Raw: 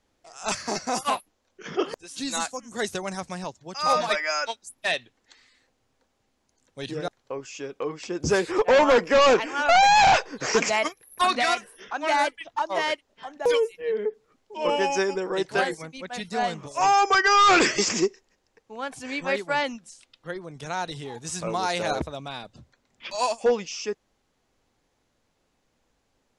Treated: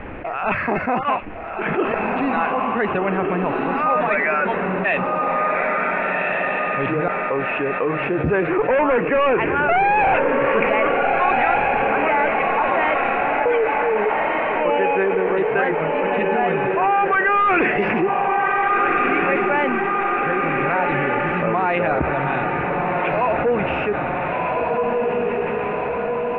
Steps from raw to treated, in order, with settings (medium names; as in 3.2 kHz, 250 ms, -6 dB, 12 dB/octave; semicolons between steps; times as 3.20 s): Chebyshev low-pass 2.6 kHz, order 5; on a send: echo that smears into a reverb 1499 ms, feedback 42%, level -4.5 dB; on the sum: level flattener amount 70%